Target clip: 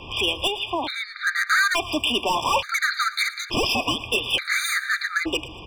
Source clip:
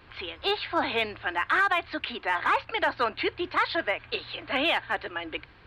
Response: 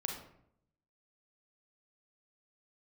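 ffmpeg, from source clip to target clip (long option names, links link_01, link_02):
-filter_complex "[0:a]equalizer=frequency=4900:width=0.53:gain=8,bandreject=frequency=60:width_type=h:width=6,bandreject=frequency=120:width_type=h:width=6,asplit=2[link_01][link_02];[link_02]alimiter=level_in=1dB:limit=-24dB:level=0:latency=1:release=237,volume=-1dB,volume=3dB[link_03];[link_01][link_03]amix=inputs=2:normalize=0,asettb=1/sr,asplit=3[link_04][link_05][link_06];[link_04]atrim=end=0.474[link_07];[link_05]atrim=start=0.47:end=1.27,asetpts=PTS-STARTPTS,afade=type=in:duration=0.004:curve=qsin,afade=type=out:start_time=0.796:duration=0.004:curve=qsin,acompressor=threshold=-28dB:ratio=8[link_08];[link_06]atrim=start=1.266[link_09];[link_07][link_08]acrossfade=duration=0.004:curve1=hsin:curve2=qsin[link_10];[link_10][link_09]acrossfade=duration=0.004:curve1=qsin:curve2=hsin,asplit=3[link_11][link_12][link_13];[link_11]afade=type=out:start_time=3.51:duration=0.02[link_14];[link_12]aeval=exprs='val(0)*sin(2*PI*910*n/s)':channel_layout=same,afade=type=in:start_time=3.51:duration=0.02,afade=type=out:start_time=3.99:duration=0.02[link_15];[link_13]afade=type=in:start_time=3.99:duration=0.02[link_16];[link_14][link_15][link_16]amix=inputs=3:normalize=0,volume=23.5dB,asoftclip=hard,volume=-23.5dB,aecho=1:1:113|226|339|452:0.126|0.0655|0.034|0.0177,afftfilt=real='re*gt(sin(2*PI*0.57*pts/sr)*(1-2*mod(floor(b*sr/1024/1200),2)),0)':imag='im*gt(sin(2*PI*0.57*pts/sr)*(1-2*mod(floor(b*sr/1024/1200),2)),0)':win_size=1024:overlap=0.75,volume=7.5dB"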